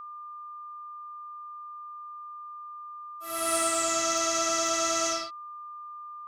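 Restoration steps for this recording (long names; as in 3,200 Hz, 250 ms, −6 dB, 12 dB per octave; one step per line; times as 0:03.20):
clipped peaks rebuilt −16.5 dBFS
notch filter 1,200 Hz, Q 30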